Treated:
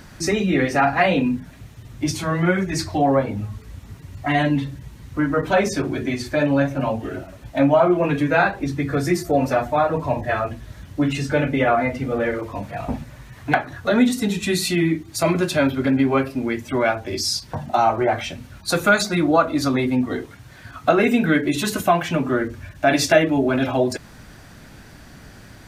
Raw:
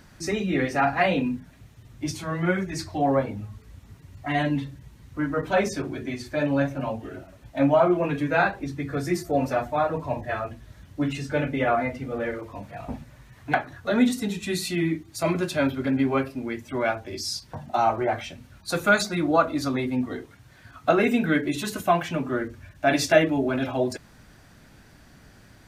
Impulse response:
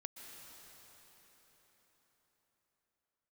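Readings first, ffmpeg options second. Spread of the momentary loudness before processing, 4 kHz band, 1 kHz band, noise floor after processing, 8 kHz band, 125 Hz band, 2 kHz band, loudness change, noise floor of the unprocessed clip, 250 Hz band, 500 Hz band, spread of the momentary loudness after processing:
14 LU, +6.0 dB, +4.5 dB, −44 dBFS, +6.5 dB, +6.0 dB, +4.5 dB, +4.5 dB, −53 dBFS, +5.0 dB, +4.5 dB, 13 LU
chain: -af "acompressor=threshold=-29dB:ratio=1.5,volume=8.5dB"

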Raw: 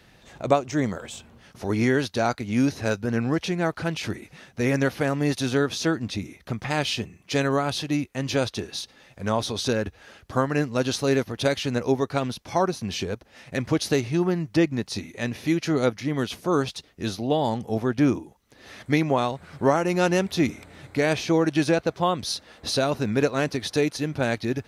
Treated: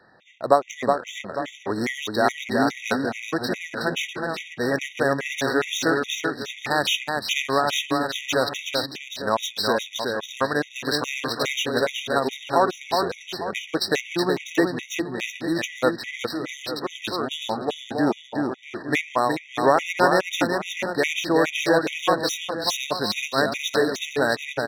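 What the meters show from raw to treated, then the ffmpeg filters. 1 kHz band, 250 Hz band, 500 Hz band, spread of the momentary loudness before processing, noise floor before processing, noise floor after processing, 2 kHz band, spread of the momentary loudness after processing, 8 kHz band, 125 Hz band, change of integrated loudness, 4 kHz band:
+4.5 dB, −2.5 dB, +1.0 dB, 10 LU, −56 dBFS, −45 dBFS, +5.5 dB, 8 LU, +2.5 dB, −8.5 dB, +1.0 dB, +5.0 dB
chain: -filter_complex "[0:a]highpass=frequency=820:poles=1,asplit=2[link_01][link_02];[link_02]aecho=0:1:370|647.5|855.6|1012|1129:0.631|0.398|0.251|0.158|0.1[link_03];[link_01][link_03]amix=inputs=2:normalize=0,adynamicsmooth=sensitivity=6.5:basefreq=2200,afftfilt=real='re*gt(sin(2*PI*2.4*pts/sr)*(1-2*mod(floor(b*sr/1024/1900),2)),0)':imag='im*gt(sin(2*PI*2.4*pts/sr)*(1-2*mod(floor(b*sr/1024/1900),2)),0)':win_size=1024:overlap=0.75,volume=7.5dB"

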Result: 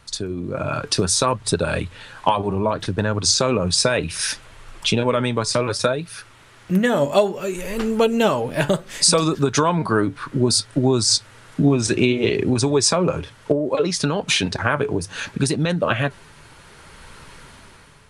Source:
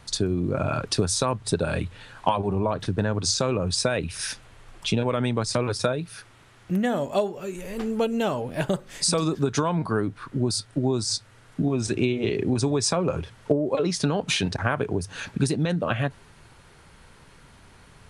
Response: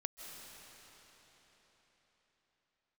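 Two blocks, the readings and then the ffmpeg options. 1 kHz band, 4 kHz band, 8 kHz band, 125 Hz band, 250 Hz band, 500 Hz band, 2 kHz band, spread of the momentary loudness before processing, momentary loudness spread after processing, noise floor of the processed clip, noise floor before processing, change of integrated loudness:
+6.0 dB, +7.5 dB, +7.5 dB, +3.0 dB, +4.5 dB, +5.5 dB, +7.0 dB, 7 LU, 9 LU, −48 dBFS, −53 dBFS, +5.5 dB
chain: -af "dynaudnorm=framelen=220:gausssize=7:maxgain=11.5dB,bandreject=frequency=740:width=13,flanger=delay=0.7:depth=6.3:regen=78:speed=0.64:shape=sinusoidal,lowshelf=frequency=390:gain=-4.5,volume=4.5dB"

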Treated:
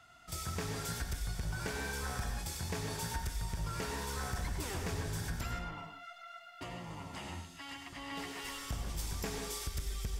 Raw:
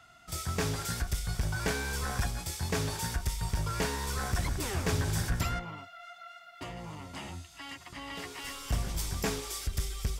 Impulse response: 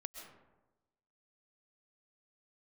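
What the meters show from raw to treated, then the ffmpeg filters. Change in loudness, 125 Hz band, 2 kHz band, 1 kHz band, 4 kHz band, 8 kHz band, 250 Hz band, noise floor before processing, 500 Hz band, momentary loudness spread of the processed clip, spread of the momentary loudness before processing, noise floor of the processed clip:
−5.5 dB, −6.5 dB, −5.0 dB, −4.5 dB, −5.0 dB, −5.0 dB, −5.5 dB, −54 dBFS, −5.5 dB, 8 LU, 13 LU, −53 dBFS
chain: -filter_complex "[0:a]acompressor=threshold=-32dB:ratio=6[link_01];[1:a]atrim=start_sample=2205,afade=type=out:start_time=0.33:duration=0.01,atrim=end_sample=14994,asetrate=61740,aresample=44100[link_02];[link_01][link_02]afir=irnorm=-1:irlink=0,volume=4.5dB"

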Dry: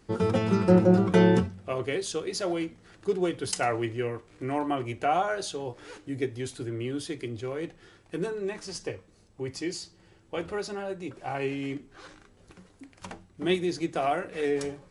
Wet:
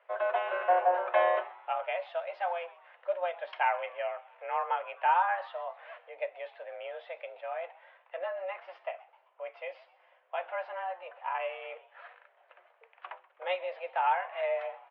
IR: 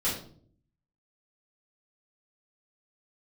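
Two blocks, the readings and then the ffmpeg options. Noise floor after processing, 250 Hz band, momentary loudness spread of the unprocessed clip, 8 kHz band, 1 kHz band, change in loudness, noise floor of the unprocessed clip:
−67 dBFS, below −30 dB, 17 LU, below −40 dB, +3.0 dB, −4.5 dB, −59 dBFS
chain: -filter_complex "[0:a]highpass=frequency=460:width_type=q:width=0.5412,highpass=frequency=460:width_type=q:width=1.307,lowpass=frequency=2800:width_type=q:width=0.5176,lowpass=frequency=2800:width_type=q:width=0.7071,lowpass=frequency=2800:width_type=q:width=1.932,afreqshift=180,aemphasis=mode=reproduction:type=bsi,asplit=4[link_01][link_02][link_03][link_04];[link_02]adelay=129,afreqshift=120,volume=-20.5dB[link_05];[link_03]adelay=258,afreqshift=240,volume=-27.6dB[link_06];[link_04]adelay=387,afreqshift=360,volume=-34.8dB[link_07];[link_01][link_05][link_06][link_07]amix=inputs=4:normalize=0"

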